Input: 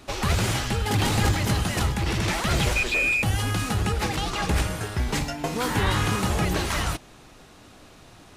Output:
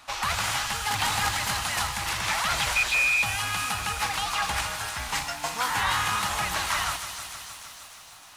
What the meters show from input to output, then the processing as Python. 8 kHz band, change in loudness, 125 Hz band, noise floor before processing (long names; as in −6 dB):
+2.5 dB, −1.5 dB, −14.0 dB, −50 dBFS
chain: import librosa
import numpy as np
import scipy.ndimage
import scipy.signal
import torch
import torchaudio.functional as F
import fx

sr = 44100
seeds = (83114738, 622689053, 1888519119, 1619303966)

y = fx.low_shelf_res(x, sr, hz=610.0, db=-14.0, q=1.5)
y = fx.notch(y, sr, hz=390.0, q=12.0)
y = fx.echo_wet_highpass(y, sr, ms=303, feedback_pct=65, hz=4300.0, wet_db=-4.5)
y = fx.echo_crushed(y, sr, ms=156, feedback_pct=80, bits=8, wet_db=-13.0)